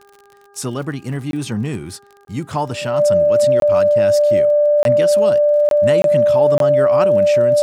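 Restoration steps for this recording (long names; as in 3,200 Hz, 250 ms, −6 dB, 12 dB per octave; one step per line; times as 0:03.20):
click removal
hum removal 402.5 Hz, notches 4
notch filter 590 Hz, Q 30
repair the gap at 0:01.31/0:02.25/0:03.60/0:04.83/0:05.69/0:06.02/0:06.58, 22 ms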